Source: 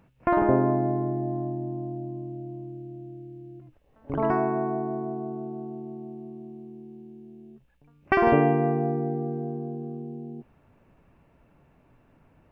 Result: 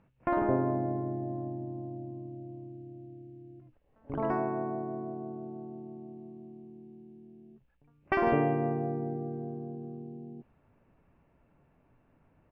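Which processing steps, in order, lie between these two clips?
pitch-shifted copies added −4 semitones −14 dB
low-pass that shuts in the quiet parts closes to 2,900 Hz, open at −20 dBFS
level −6.5 dB

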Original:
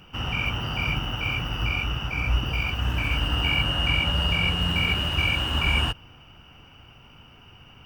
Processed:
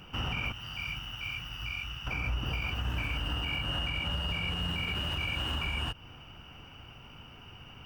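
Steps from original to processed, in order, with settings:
0:00.52–0:02.07: guitar amp tone stack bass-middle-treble 5-5-5
downward compressor 2.5 to 1, threshold −30 dBFS, peak gain reduction 8.5 dB
brickwall limiter −24 dBFS, peak gain reduction 6 dB

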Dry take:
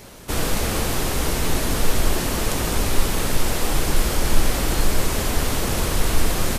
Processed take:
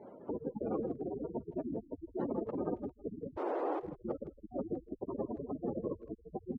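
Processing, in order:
0:03.36–0:03.80: Butterworth high-pass 300 Hz 36 dB per octave
gate on every frequency bin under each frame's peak −15 dB strong
flat-topped band-pass 470 Hz, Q 0.66
far-end echo of a speakerphone 160 ms, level −17 dB
level −4 dB

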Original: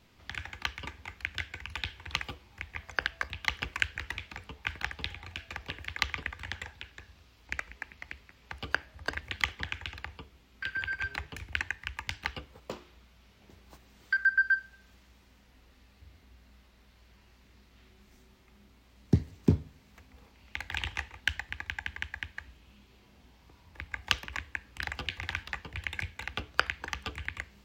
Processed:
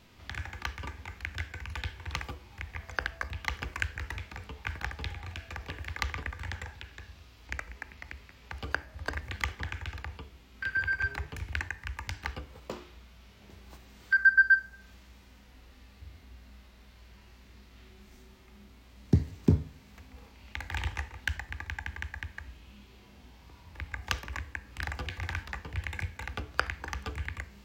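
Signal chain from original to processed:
dynamic equaliser 3,100 Hz, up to −8 dB, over −50 dBFS, Q 1.2
harmonic and percussive parts rebalanced harmonic +7 dB

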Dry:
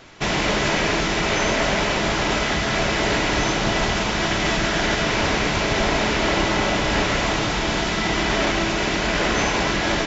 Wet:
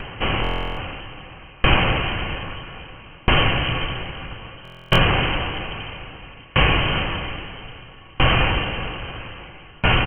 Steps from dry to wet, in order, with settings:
voice inversion scrambler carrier 3,100 Hz
spectral tilt −3.5 dB per octave
echo with shifted repeats 460 ms, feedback 60%, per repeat +44 Hz, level −18.5 dB
upward compression, threshold −31 dBFS
buffer that repeats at 0:00.42/0:04.63, samples 1,024, times 14
tremolo with a ramp in dB decaying 0.61 Hz, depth 32 dB
level +7 dB

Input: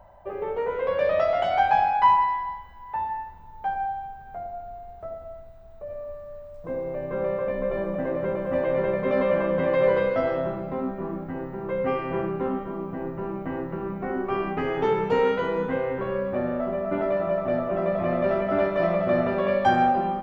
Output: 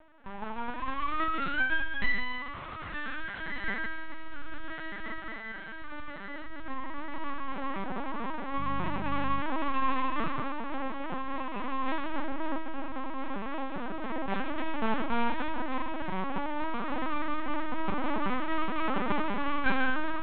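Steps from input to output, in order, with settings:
0:02.41–0:03.19: dynamic equaliser 1,000 Hz, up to −3 dB, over −38 dBFS
full-wave rectification
feedback delay with all-pass diffusion 1,607 ms, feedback 62%, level −7 dB
linear-prediction vocoder at 8 kHz pitch kept
0:08.57–0:09.40: hum with harmonics 50 Hz, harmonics 4, −34 dBFS 0 dB per octave
level −6 dB

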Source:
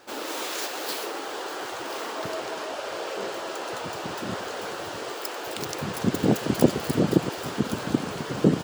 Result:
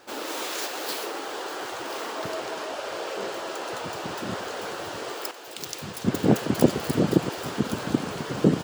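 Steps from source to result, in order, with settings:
0:05.31–0:06.55: multiband upward and downward expander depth 70%

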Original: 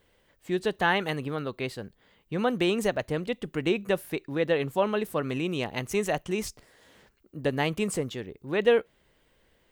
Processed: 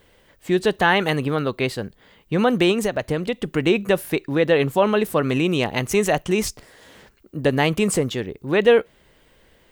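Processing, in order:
in parallel at +0.5 dB: brickwall limiter −20 dBFS, peak gain reduction 10.5 dB
0:02.71–0:03.50: on the sum: downward compressor, threshold −22 dBFS, peak gain reduction 6 dB
level +3.5 dB

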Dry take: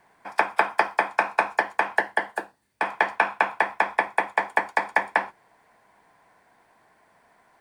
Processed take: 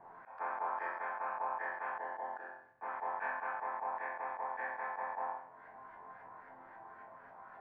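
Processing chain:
auto-filter low-pass saw up 3.7 Hz 850–1,700 Hz
resonators tuned to a chord F2 major, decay 0.46 s
volume swells 562 ms
level +16.5 dB

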